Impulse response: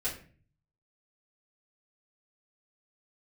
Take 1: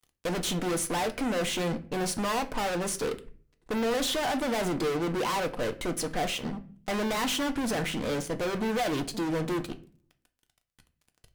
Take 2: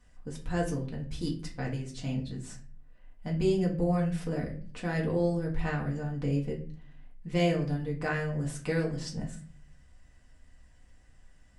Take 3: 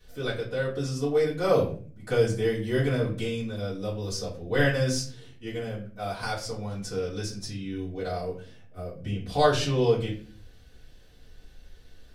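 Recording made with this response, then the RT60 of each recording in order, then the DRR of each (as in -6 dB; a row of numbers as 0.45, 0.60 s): 3; 0.45, 0.40, 0.40 s; 7.5, -2.5, -9.5 dB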